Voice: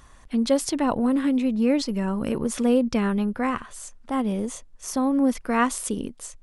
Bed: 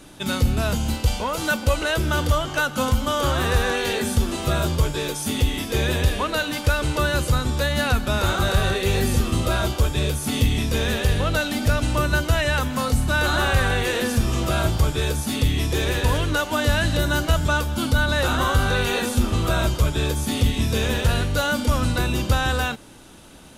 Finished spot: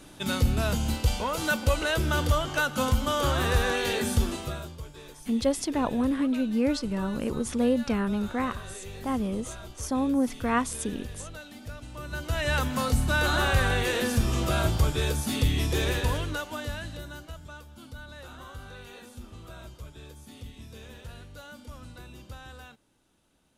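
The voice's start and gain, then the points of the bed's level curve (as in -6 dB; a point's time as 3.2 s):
4.95 s, -4.0 dB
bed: 4.27 s -4 dB
4.75 s -20.5 dB
11.92 s -20.5 dB
12.53 s -4 dB
15.88 s -4 dB
17.4 s -23.5 dB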